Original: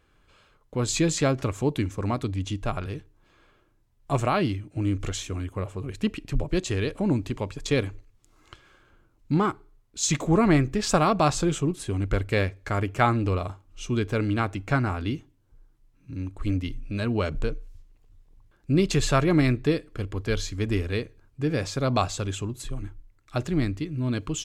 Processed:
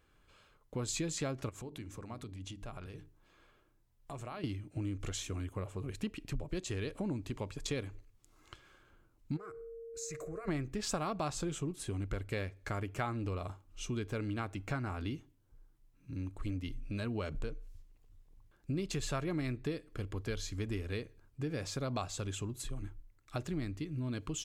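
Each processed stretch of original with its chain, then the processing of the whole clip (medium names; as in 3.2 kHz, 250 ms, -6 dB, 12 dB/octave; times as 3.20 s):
1.49–4.44 s: compression 4:1, threshold -37 dBFS + hum notches 50/100/150/200/250/300/350/400 Hz
9.36–10.47 s: static phaser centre 880 Hz, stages 6 + compression 2.5:1, threshold -41 dBFS + whistle 460 Hz -39 dBFS
whole clip: treble shelf 9.6 kHz +6 dB; compression 3:1, threshold -30 dBFS; trim -5.5 dB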